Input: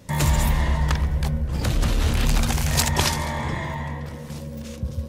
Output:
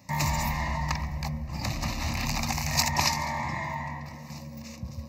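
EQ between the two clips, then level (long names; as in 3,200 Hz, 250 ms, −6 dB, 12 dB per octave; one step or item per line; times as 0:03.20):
high-pass filter 230 Hz 6 dB per octave
phaser with its sweep stopped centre 2,200 Hz, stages 8
0.0 dB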